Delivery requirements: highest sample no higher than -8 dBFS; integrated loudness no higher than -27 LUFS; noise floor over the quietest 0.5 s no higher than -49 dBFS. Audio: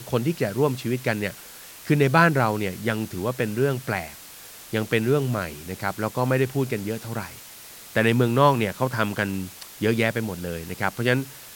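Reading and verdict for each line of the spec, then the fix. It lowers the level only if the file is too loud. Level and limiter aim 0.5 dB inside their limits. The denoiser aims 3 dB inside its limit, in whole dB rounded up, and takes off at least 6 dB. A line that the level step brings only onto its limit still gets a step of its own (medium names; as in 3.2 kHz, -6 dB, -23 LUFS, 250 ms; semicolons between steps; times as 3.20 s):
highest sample -3.5 dBFS: fail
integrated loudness -24.0 LUFS: fail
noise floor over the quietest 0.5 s -43 dBFS: fail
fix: noise reduction 6 dB, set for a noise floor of -43 dBFS; trim -3.5 dB; peak limiter -8.5 dBFS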